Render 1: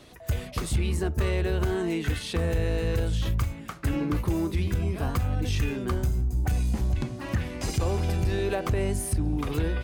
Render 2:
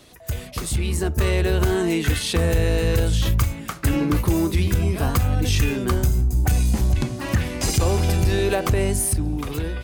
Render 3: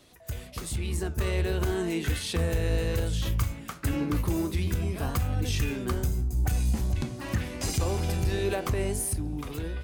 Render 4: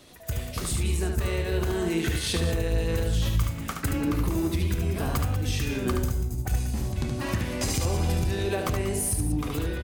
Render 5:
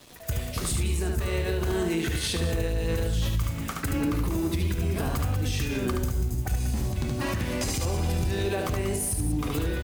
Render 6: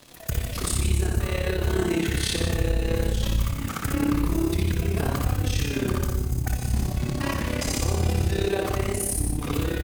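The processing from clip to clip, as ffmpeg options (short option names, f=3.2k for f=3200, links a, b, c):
-af "highshelf=f=4.8k:g=8,dynaudnorm=f=220:g=9:m=6.5dB"
-af "flanger=delay=9.8:depth=9.4:regen=79:speed=1.3:shape=triangular,volume=-3.5dB"
-af "acompressor=threshold=-29dB:ratio=6,aecho=1:1:72.89|189.5:0.562|0.282,volume=5dB"
-af "alimiter=limit=-20dB:level=0:latency=1:release=99,acrusher=bits=7:mix=0:aa=0.5,volume=2dB"
-filter_complex "[0:a]tremolo=f=34:d=0.75,asplit=2[a][b];[b]aecho=0:1:58.31|154.5:0.562|0.355[c];[a][c]amix=inputs=2:normalize=0,volume=4dB"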